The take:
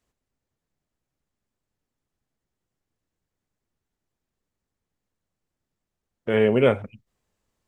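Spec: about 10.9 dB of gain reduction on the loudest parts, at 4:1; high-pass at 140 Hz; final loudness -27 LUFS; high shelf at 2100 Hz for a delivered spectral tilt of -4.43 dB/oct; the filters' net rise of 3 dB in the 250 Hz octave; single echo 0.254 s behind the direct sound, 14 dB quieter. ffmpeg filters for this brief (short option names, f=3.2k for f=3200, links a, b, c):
-af "highpass=140,equalizer=f=250:t=o:g=4,highshelf=f=2.1k:g=7.5,acompressor=threshold=-25dB:ratio=4,aecho=1:1:254:0.2,volume=2.5dB"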